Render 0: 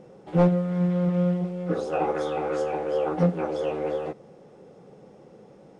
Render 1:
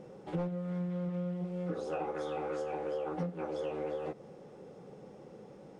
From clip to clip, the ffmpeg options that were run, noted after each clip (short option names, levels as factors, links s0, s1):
-af "bandreject=f=680:w=19,acompressor=threshold=0.0251:ratio=6,volume=0.841"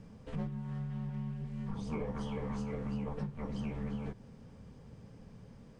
-af "lowshelf=f=170:g=-7.5,afreqshift=-320"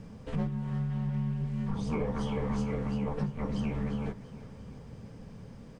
-af "aecho=1:1:344|688|1032|1376|1720:0.158|0.0856|0.0462|0.025|0.0135,volume=2"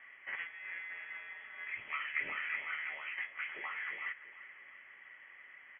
-af "highpass=f=1500:t=q:w=10,lowpass=f=3000:t=q:w=0.5098,lowpass=f=3000:t=q:w=0.6013,lowpass=f=3000:t=q:w=0.9,lowpass=f=3000:t=q:w=2.563,afreqshift=-3500"